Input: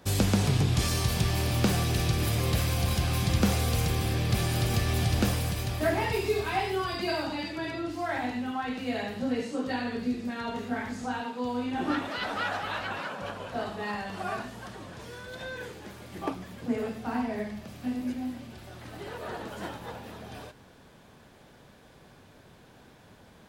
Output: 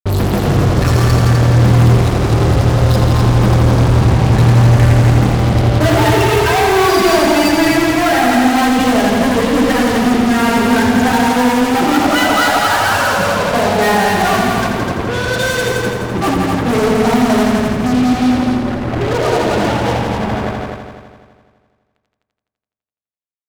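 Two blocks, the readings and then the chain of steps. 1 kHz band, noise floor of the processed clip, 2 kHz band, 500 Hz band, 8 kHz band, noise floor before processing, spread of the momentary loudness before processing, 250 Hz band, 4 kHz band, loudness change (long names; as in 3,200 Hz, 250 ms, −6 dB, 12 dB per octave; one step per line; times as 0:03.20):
+19.5 dB, −81 dBFS, +18.0 dB, +19.0 dB, +13.5 dB, −55 dBFS, 15 LU, +18.5 dB, +14.5 dB, +17.5 dB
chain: spectral peaks only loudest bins 16
fuzz pedal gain 46 dB, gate −46 dBFS
echo machine with several playback heads 84 ms, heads all three, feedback 49%, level −7 dB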